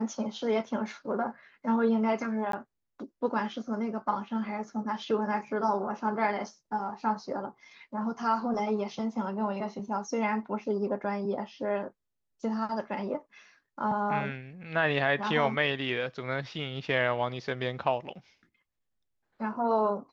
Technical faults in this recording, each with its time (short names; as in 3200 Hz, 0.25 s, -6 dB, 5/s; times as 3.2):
2.52–2.53 gap 13 ms